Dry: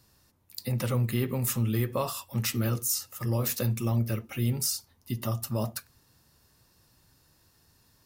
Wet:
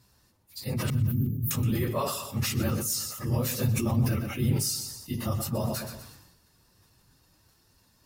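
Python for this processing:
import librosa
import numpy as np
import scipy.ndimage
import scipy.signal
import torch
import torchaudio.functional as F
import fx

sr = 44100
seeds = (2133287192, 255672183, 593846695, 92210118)

y = fx.phase_scramble(x, sr, seeds[0], window_ms=50)
y = fx.peak_eq(y, sr, hz=12000.0, db=2.5, octaves=1.5)
y = fx.cheby2_bandstop(y, sr, low_hz=760.0, high_hz=6000.0, order=4, stop_db=60, at=(0.9, 1.51))
y = fx.high_shelf(y, sr, hz=8900.0, db=-6.5)
y = fx.echo_feedback(y, sr, ms=123, feedback_pct=36, wet_db=-14.5)
y = fx.sustainer(y, sr, db_per_s=50.0)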